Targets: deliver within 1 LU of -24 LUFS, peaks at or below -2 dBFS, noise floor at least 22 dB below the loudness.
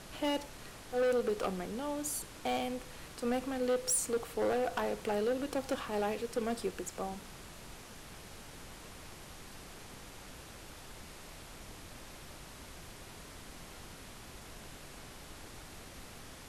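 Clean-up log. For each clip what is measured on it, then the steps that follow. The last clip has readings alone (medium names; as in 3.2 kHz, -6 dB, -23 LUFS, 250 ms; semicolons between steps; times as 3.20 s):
clipped samples 1.1%; clipping level -26.5 dBFS; noise floor -51 dBFS; noise floor target -57 dBFS; loudness -35.0 LUFS; peak level -26.5 dBFS; loudness target -24.0 LUFS
-> clip repair -26.5 dBFS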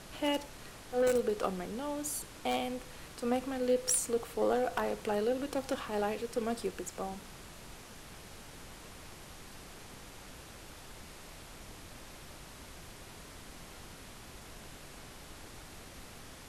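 clipped samples 0.0%; noise floor -51 dBFS; noise floor target -56 dBFS
-> noise print and reduce 6 dB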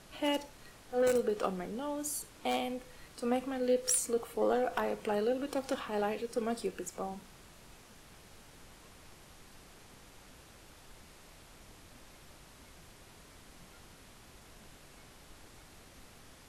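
noise floor -57 dBFS; loudness -34.0 LUFS; peak level -17.5 dBFS; loudness target -24.0 LUFS
-> trim +10 dB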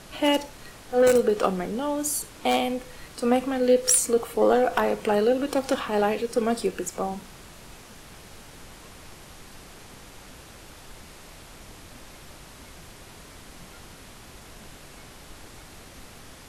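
loudness -24.0 LUFS; peak level -7.5 dBFS; noise floor -47 dBFS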